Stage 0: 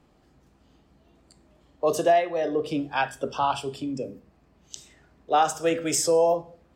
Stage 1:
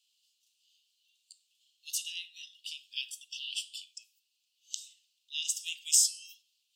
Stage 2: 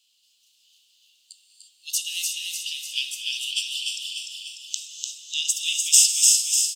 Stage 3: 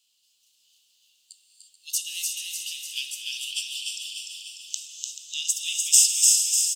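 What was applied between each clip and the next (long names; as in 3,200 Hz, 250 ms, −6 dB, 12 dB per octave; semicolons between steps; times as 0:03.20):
Chebyshev high-pass filter 2,800 Hz, order 6; level +3 dB
on a send: repeating echo 297 ms, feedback 57%, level −3.5 dB; on the sum: reverb whose tail is shaped and stops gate 380 ms rising, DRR 4.5 dB; level +8.5 dB
parametric band 3,300 Hz −5 dB 1.4 octaves; single-tap delay 434 ms −11 dB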